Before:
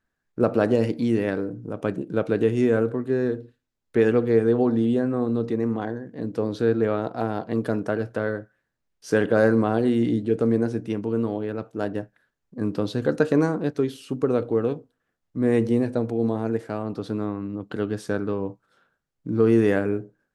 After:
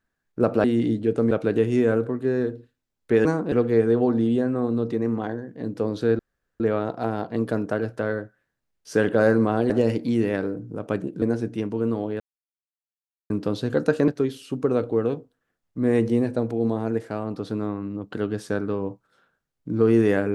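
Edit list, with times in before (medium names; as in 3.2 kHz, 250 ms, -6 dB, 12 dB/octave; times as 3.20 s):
0.64–2.16 s: swap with 9.87–10.54 s
6.77 s: insert room tone 0.41 s
11.52–12.62 s: mute
13.40–13.67 s: move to 4.10 s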